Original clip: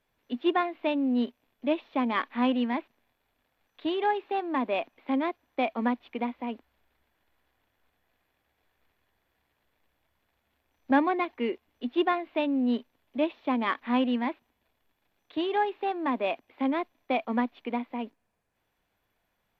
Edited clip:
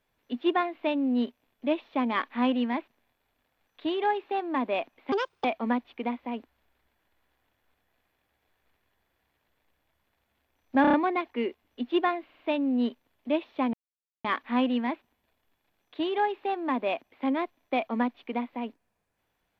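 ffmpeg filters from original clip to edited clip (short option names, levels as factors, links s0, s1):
-filter_complex "[0:a]asplit=11[s0][s1][s2][s3][s4][s5][s6][s7][s8][s9][s10];[s0]atrim=end=5.124[s11];[s1]atrim=start=5.12:end=5.6,asetpts=PTS-STARTPTS,asetrate=65268,aresample=44100[s12];[s2]atrim=start=5.596:end=11.002[s13];[s3]atrim=start=10.968:end=11.002[s14];[s4]atrim=start=10.968:end=11.002[s15];[s5]atrim=start=10.968:end=11.002[s16];[s6]atrim=start=10.968:end=12.332[s17];[s7]atrim=start=12.278:end=12.332[s18];[s8]atrim=start=12.278:end=12.332[s19];[s9]atrim=start=12.278:end=13.62,asetpts=PTS-STARTPTS,afade=t=out:st=1.338:d=0.004:c=hsin,apad=pad_dur=0.51[s20];[s10]atrim=start=13.62,asetpts=PTS-STARTPTS,afade=t=in:d=0.004:c=hsin[s21];[s11][s12]acrossfade=d=0.004:c1=hsin:c2=hsin[s22];[s22][s13]acrossfade=d=0.004:c1=hsin:c2=hsin[s23];[s23][s14]acrossfade=d=0.004:c1=hsin:c2=hsin[s24];[s24][s15]acrossfade=d=0.004:c1=hsin:c2=hsin[s25];[s25][s16]acrossfade=d=0.004:c1=hsin:c2=hsin[s26];[s26][s17]acrossfade=d=0.004:c1=hsin:c2=hsin[s27];[s27][s18]acrossfade=d=0.004:c1=hsin:c2=hsin[s28];[s28][s19]acrossfade=d=0.004:c1=hsin:c2=hsin[s29];[s20][s21]concat=n=2:v=0:a=1[s30];[s29][s30]acrossfade=d=0.004:c1=hsin:c2=hsin"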